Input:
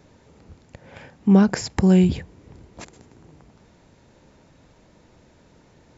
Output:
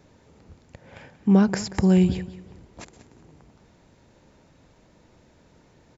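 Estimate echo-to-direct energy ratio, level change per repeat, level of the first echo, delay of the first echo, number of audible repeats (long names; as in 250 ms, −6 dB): −15.5 dB, −10.5 dB, −16.0 dB, 183 ms, 2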